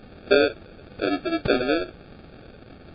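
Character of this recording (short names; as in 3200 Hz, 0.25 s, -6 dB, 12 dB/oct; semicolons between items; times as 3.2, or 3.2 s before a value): a quantiser's noise floor 8-bit, dither triangular; phasing stages 12, 1 Hz, lowest notch 620–1500 Hz; aliases and images of a low sample rate 1000 Hz, jitter 0%; MP3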